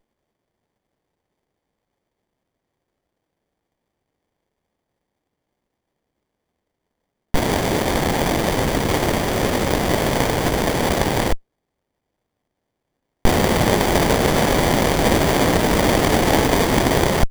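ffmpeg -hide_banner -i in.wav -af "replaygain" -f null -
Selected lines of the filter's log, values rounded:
track_gain = +1.7 dB
track_peak = 0.555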